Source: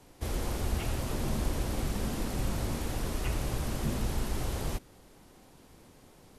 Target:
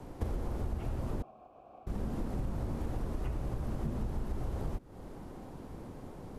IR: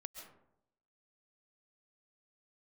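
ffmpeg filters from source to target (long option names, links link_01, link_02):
-filter_complex "[0:a]acrossover=split=480|1400[link_01][link_02][link_03];[link_02]crystalizer=i=9:c=0[link_04];[link_01][link_04][link_03]amix=inputs=3:normalize=0,acompressor=threshold=-42dB:ratio=16,asettb=1/sr,asplit=3[link_05][link_06][link_07];[link_05]atrim=end=1.224[link_08];[link_06]atrim=start=1.22:end=1.87,asetpts=PTS-STARTPTS,afade=type=in:duration=0.004:curve=qsin,afade=type=out:start_time=0.646:duration=0.004:curve=qsin,asplit=3[link_09][link_10][link_11];[link_09]bandpass=frequency=730:width_type=q:width=8,volume=0dB[link_12];[link_10]bandpass=frequency=1090:width_type=q:width=8,volume=-6dB[link_13];[link_11]bandpass=frequency=2440:width_type=q:width=8,volume=-9dB[link_14];[link_12][link_13][link_14]amix=inputs=3:normalize=0[link_15];[link_07]atrim=start=1.866[link_16];[link_08][link_15]acrossfade=duration=0.004:curve1=hsin:curve2=qsin[link_17];[link_17][link_16]acrossfade=duration=0.004:curve1=qsin:curve2=hsin,tiltshelf=frequency=1200:gain=8.5,volume=3.5dB"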